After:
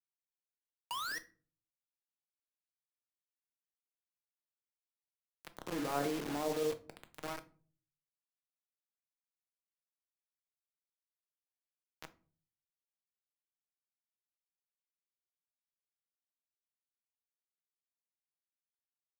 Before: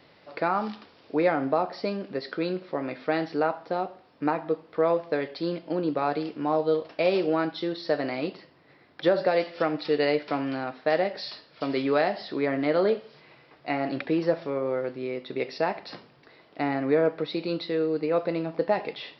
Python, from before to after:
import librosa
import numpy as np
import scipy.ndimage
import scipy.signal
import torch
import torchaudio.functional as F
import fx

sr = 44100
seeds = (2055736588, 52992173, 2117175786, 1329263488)

y = fx.doppler_pass(x, sr, speed_mps=7, closest_m=1.8, pass_at_s=5.71)
y = scipy.signal.sosfilt(scipy.signal.butter(2, 120.0, 'highpass', fs=sr, output='sos'), y)
y = fx.high_shelf(y, sr, hz=3800.0, db=-11.0)
y = fx.hum_notches(y, sr, base_hz=50, count=10)
y = fx.auto_swell(y, sr, attack_ms=621.0)
y = fx.level_steps(y, sr, step_db=11)
y = fx.transient(y, sr, attack_db=-10, sustain_db=6)
y = fx.spec_paint(y, sr, seeds[0], shape='rise', start_s=0.9, length_s=0.29, low_hz=910.0, high_hz=2000.0, level_db=-50.0)
y = fx.quant_dither(y, sr, seeds[1], bits=8, dither='none')
y = fx.room_shoebox(y, sr, seeds[2], volume_m3=240.0, walls='furnished', distance_m=0.56)
y = fx.band_squash(y, sr, depth_pct=40)
y = y * librosa.db_to_amplitude(6.5)